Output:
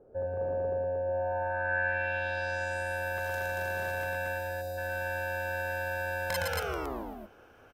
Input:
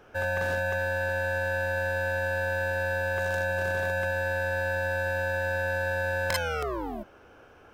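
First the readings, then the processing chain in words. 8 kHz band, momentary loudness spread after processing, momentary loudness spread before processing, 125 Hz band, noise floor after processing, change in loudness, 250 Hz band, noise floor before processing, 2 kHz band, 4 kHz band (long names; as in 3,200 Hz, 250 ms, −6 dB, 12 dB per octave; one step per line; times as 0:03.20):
−2.5 dB, 6 LU, 2 LU, −6.5 dB, −57 dBFS, −4.0 dB, −4.5 dB, −54 dBFS, −4.5 dB, −4.0 dB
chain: gain on a spectral selection 0:04.38–0:04.78, 770–3,600 Hz −16 dB
loudspeakers that aren't time-aligned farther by 39 metres −3 dB, 79 metres −2 dB
low-pass filter sweep 500 Hz → 14,000 Hz, 0:01.05–0:03.09
level −6.5 dB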